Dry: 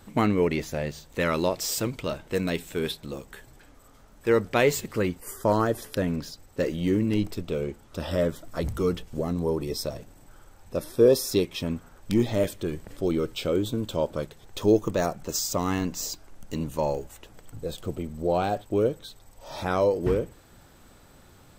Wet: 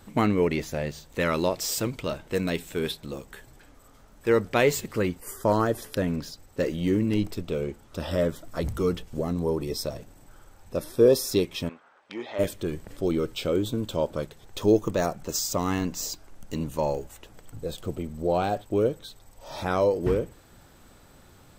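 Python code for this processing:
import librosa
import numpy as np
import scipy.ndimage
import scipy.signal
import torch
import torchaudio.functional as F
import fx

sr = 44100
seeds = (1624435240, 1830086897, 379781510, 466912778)

y = fx.bandpass_edges(x, sr, low_hz=670.0, high_hz=2800.0, at=(11.68, 12.38), fade=0.02)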